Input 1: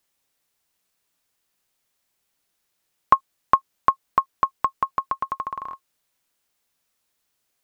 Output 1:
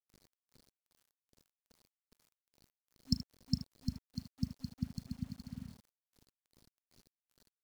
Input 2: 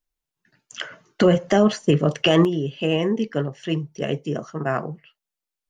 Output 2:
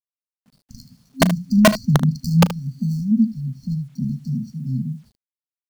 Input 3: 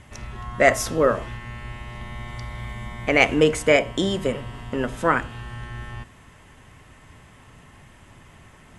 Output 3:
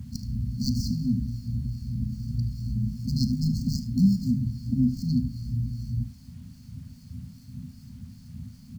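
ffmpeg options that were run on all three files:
-filter_complex "[0:a]highpass=frequency=63:width=0.5412,highpass=frequency=63:width=1.3066,acrossover=split=1600[link_01][link_02];[link_01]aeval=exprs='val(0)*(1-0.7/2+0.7/2*cos(2*PI*2.5*n/s))':channel_layout=same[link_03];[link_02]aeval=exprs='val(0)*(1-0.7/2-0.7/2*cos(2*PI*2.5*n/s))':channel_layout=same[link_04];[link_03][link_04]amix=inputs=2:normalize=0,acrossover=split=290|3600[link_05][link_06][link_07];[link_06]acontrast=54[link_08];[link_07]acrusher=samples=35:mix=1:aa=0.000001:lfo=1:lforange=21:lforate=0.63[link_09];[link_05][link_08][link_09]amix=inputs=3:normalize=0,afftfilt=real='re*(1-between(b*sr/4096,260,4200))':imag='im*(1-between(b*sr/4096,260,4200))':win_size=4096:overlap=0.75,equalizer=frequency=400:width_type=o:width=0.33:gain=5,equalizer=frequency=2500:width_type=o:width=0.33:gain=6,equalizer=frequency=4000:width_type=o:width=0.33:gain=5,equalizer=frequency=10000:width_type=o:width=0.33:gain=-9,asplit=2[link_10][link_11];[link_11]acompressor=threshold=-39dB:ratio=4,volume=2dB[link_12];[link_10][link_12]amix=inputs=2:normalize=0,aeval=exprs='(mod(3.76*val(0)+1,2)-1)/3.76':channel_layout=same,aecho=1:1:37|76:0.141|0.2,acrusher=bits=10:mix=0:aa=0.000001,volume=5dB"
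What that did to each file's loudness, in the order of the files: −17.0, +1.0, −6.5 LU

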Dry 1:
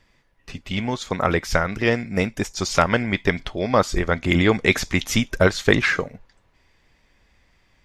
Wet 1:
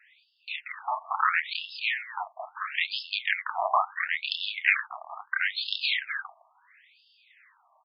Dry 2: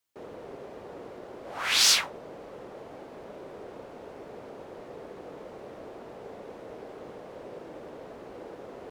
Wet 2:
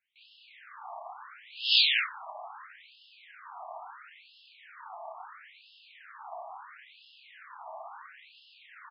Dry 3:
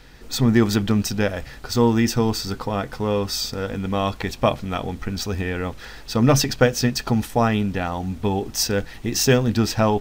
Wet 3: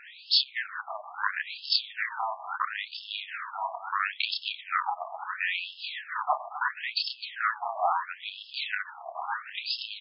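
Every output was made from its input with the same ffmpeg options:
-filter_complex "[0:a]acompressor=threshold=-26dB:ratio=4,asplit=2[link_01][link_02];[link_02]aecho=0:1:29.15|259.5:0.891|0.355[link_03];[link_01][link_03]amix=inputs=2:normalize=0,aeval=exprs='0.355*(cos(1*acos(clip(val(0)/0.355,-1,1)))-cos(1*PI/2))+0.126*(cos(4*acos(clip(val(0)/0.355,-1,1)))-cos(4*PI/2))':channel_layout=same,afftfilt=real='re*between(b*sr/1024,850*pow(3800/850,0.5+0.5*sin(2*PI*0.74*pts/sr))/1.41,850*pow(3800/850,0.5+0.5*sin(2*PI*0.74*pts/sr))*1.41)':imag='im*between(b*sr/1024,850*pow(3800/850,0.5+0.5*sin(2*PI*0.74*pts/sr))/1.41,850*pow(3800/850,0.5+0.5*sin(2*PI*0.74*pts/sr))*1.41)':win_size=1024:overlap=0.75,volume=6dB"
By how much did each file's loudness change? −7.5, −5.5, −9.0 LU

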